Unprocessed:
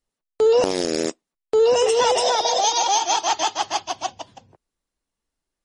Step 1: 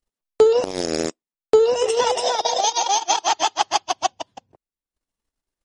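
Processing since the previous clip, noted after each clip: transient shaper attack +9 dB, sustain -12 dB; trim -2 dB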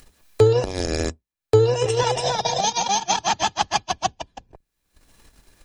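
octave divider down 2 oct, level +3 dB; upward compressor, threshold -26 dBFS; small resonant body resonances 1.7/2.4/4 kHz, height 10 dB; trim -2 dB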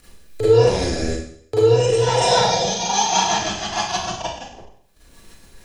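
peak limiter -15.5 dBFS, peak gain reduction 11 dB; rotary cabinet horn 1.2 Hz, later 7 Hz, at 3.67 s; Schroeder reverb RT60 0.62 s, combs from 33 ms, DRR -9.5 dB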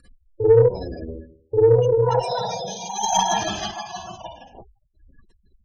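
square tremolo 0.66 Hz, depth 60%, duty 45%; spectral gate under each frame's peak -15 dB strong; Chebyshev shaper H 4 -26 dB, 7 -44 dB, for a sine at -4 dBFS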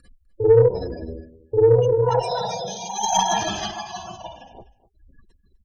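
delay 251 ms -18.5 dB

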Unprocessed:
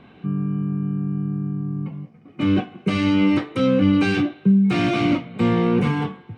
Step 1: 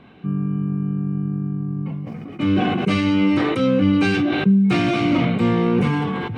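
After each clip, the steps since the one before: decay stretcher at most 20 dB/s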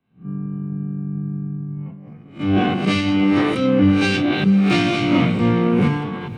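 reverse spectral sustain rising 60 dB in 0.50 s; echo that smears into a reverb 501 ms, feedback 46%, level -14 dB; three bands expanded up and down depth 100%

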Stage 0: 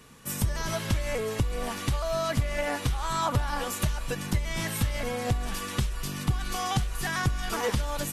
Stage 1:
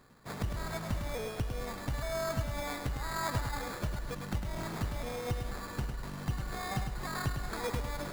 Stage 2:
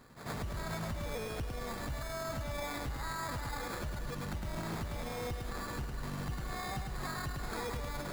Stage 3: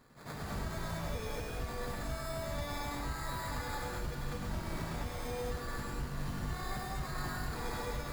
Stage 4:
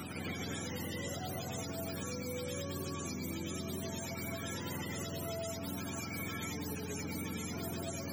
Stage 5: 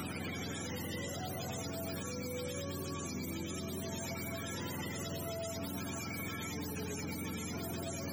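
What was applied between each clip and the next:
sample-rate reducer 2.9 kHz, jitter 0%; bit-crushed delay 104 ms, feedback 35%, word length 8-bit, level -6 dB; trim -8 dB
peak limiter -33 dBFS, peak gain reduction 11.5 dB; on a send: reverse echo 91 ms -9.5 dB; on the sum: trim +2 dB
gated-style reverb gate 250 ms rising, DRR -3.5 dB; trim -5 dB
spectrum inverted on a logarithmic axis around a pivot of 570 Hz; three bands compressed up and down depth 100%
peak limiter -36 dBFS, peak gain reduction 8.5 dB; trim +4.5 dB

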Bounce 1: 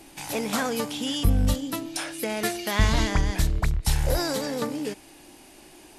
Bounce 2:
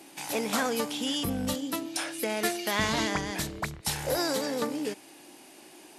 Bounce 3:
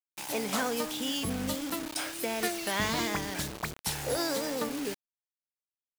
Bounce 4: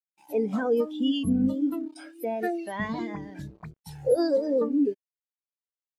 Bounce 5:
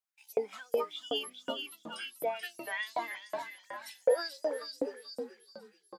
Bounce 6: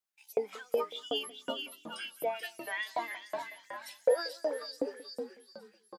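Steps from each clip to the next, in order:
high-pass 200 Hz 12 dB/octave; trim -1 dB
vibrato 1.4 Hz 78 cents; word length cut 6-bit, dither none; trim -2.5 dB
in parallel at 0 dB: peak limiter -25.5 dBFS, peak gain reduction 11 dB; on the sum: spectral contrast expander 2.5:1
frequency-shifting echo 434 ms, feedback 54%, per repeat -36 Hz, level -6 dB; LFO high-pass saw up 2.7 Hz 600–7800 Hz
delay 181 ms -21 dB

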